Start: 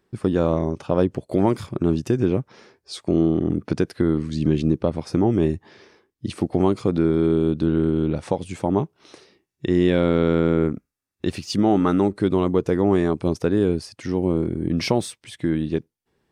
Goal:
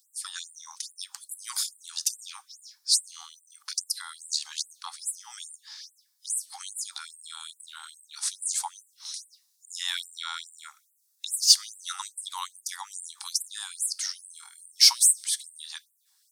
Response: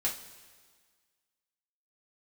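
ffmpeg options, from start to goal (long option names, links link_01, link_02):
-filter_complex "[0:a]aexciter=amount=6:drive=8.4:freq=3800,asplit=2[link_01][link_02];[1:a]atrim=start_sample=2205,afade=type=out:start_time=0.4:duration=0.01,atrim=end_sample=18081,lowshelf=frequency=240:gain=8.5[link_03];[link_02][link_03]afir=irnorm=-1:irlink=0,volume=-20dB[link_04];[link_01][link_04]amix=inputs=2:normalize=0,afftfilt=real='re*gte(b*sr/1024,750*pow(7500/750,0.5+0.5*sin(2*PI*2.4*pts/sr)))':imag='im*gte(b*sr/1024,750*pow(7500/750,0.5+0.5*sin(2*PI*2.4*pts/sr)))':win_size=1024:overlap=0.75,volume=-3.5dB"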